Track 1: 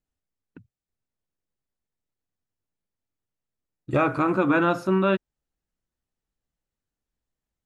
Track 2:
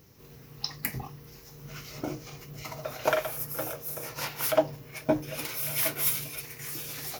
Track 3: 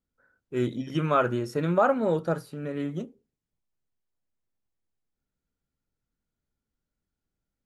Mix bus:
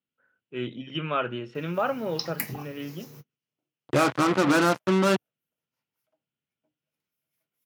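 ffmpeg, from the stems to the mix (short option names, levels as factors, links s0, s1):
-filter_complex "[0:a]acrusher=bits=3:mix=0:aa=0.5,volume=0.944[s0];[1:a]adelay=1550,volume=1.12[s1];[2:a]lowpass=f=2900:t=q:w=5,volume=0.531,asplit=2[s2][s3];[s3]apad=whole_len=385768[s4];[s1][s4]sidechaingate=range=0.00178:threshold=0.00141:ratio=16:detection=peak[s5];[s0][s5][s2]amix=inputs=3:normalize=0,highpass=f=110:w=0.5412,highpass=f=110:w=1.3066"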